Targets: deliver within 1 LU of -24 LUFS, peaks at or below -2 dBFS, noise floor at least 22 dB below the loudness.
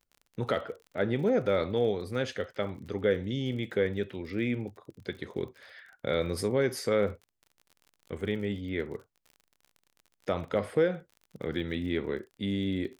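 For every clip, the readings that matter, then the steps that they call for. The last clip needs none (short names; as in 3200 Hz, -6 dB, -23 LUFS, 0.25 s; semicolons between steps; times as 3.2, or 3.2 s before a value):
ticks 38/s; loudness -31.5 LUFS; peak -14.0 dBFS; loudness target -24.0 LUFS
-> de-click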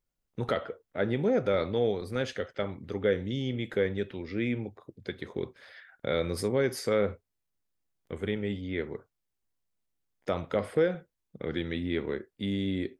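ticks 0.077/s; loudness -31.5 LUFS; peak -14.0 dBFS; loudness target -24.0 LUFS
-> gain +7.5 dB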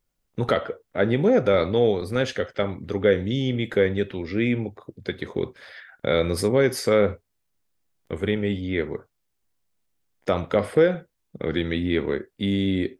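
loudness -24.0 LUFS; peak -6.5 dBFS; noise floor -75 dBFS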